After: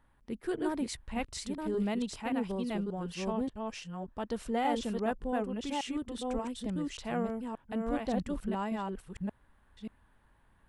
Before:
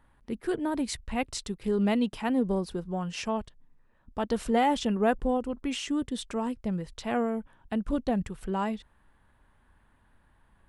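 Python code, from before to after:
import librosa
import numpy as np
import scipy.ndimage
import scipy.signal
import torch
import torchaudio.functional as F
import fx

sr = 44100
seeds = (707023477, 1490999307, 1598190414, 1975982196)

y = fx.reverse_delay(x, sr, ms=581, wet_db=-2)
y = fx.rider(y, sr, range_db=3, speed_s=2.0)
y = F.gain(torch.from_numpy(y), -7.0).numpy()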